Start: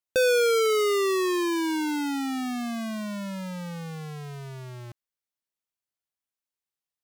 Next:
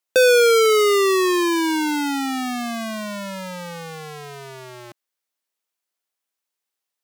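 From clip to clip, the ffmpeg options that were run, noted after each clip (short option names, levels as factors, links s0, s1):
-af "highpass=300,volume=2.51"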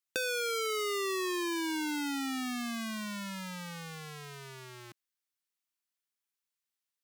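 -af "acompressor=threshold=0.0891:ratio=2.5,equalizer=f=600:t=o:w=0.93:g=-13.5,volume=0.473"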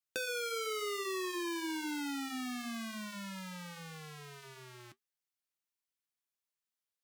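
-af "flanger=delay=5.9:depth=6:regen=-63:speed=1:shape=triangular"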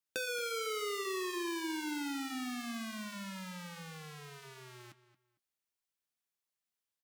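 -filter_complex "[0:a]asplit=2[s0][s1];[s1]adelay=227,lowpass=f=4000:p=1,volume=0.178,asplit=2[s2][s3];[s3]adelay=227,lowpass=f=4000:p=1,volume=0.23[s4];[s0][s2][s4]amix=inputs=3:normalize=0"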